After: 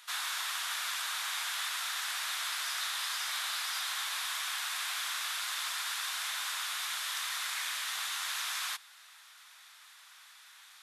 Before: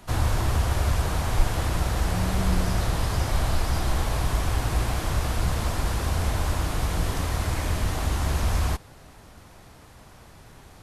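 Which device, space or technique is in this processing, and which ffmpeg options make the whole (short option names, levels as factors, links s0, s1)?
headphones lying on a table: -af "highpass=f=1300:w=0.5412,highpass=f=1300:w=1.3066,equalizer=f=3600:t=o:w=0.27:g=7"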